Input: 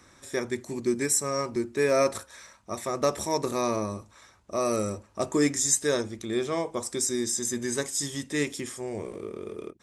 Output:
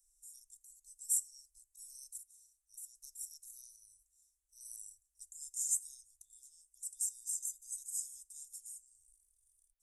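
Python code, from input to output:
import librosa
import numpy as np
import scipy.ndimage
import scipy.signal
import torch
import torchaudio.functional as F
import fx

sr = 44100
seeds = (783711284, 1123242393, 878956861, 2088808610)

y = scipy.signal.sosfilt(scipy.signal.cheby2(4, 70, [130.0, 2200.0], 'bandstop', fs=sr, output='sos'), x)
y = y * 10.0 ** (-3.0 / 20.0)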